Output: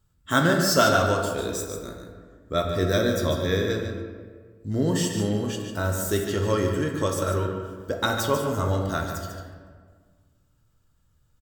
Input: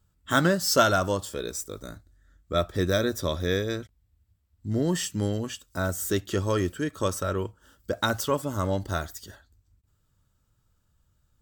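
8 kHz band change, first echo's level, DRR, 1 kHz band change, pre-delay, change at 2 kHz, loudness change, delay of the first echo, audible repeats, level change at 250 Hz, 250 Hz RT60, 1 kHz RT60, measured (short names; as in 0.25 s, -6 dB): +1.5 dB, -8.5 dB, 1.0 dB, +2.5 dB, 7 ms, +2.5 dB, +2.5 dB, 0.146 s, 1, +3.0 dB, 1.9 s, 1.5 s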